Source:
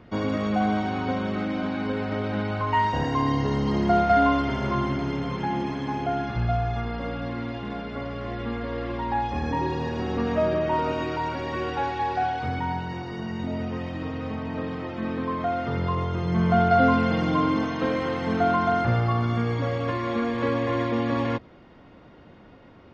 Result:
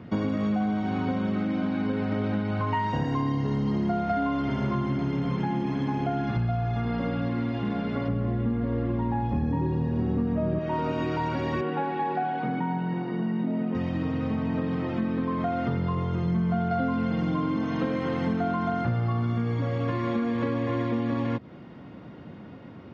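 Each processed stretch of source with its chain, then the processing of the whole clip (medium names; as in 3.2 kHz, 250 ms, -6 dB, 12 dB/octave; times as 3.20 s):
8.08–10.59 s: high-pass 47 Hz + tilt EQ -3 dB/octave
11.61–13.75 s: elliptic high-pass 150 Hz + distance through air 290 m
whole clip: high-pass 160 Hz 12 dB/octave; tone controls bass +13 dB, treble -3 dB; compression, threshold -26 dBFS; trim +2 dB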